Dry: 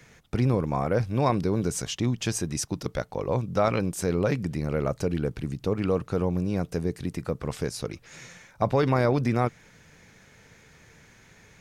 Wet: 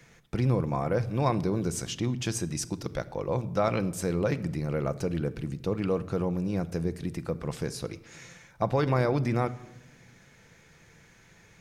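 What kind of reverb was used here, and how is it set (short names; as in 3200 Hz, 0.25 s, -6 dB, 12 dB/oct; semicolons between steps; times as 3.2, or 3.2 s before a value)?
shoebox room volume 3500 m³, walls furnished, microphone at 0.76 m; gain -3 dB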